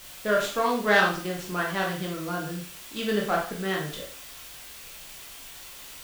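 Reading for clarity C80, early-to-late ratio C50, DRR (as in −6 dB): 10.5 dB, 6.0 dB, −2.0 dB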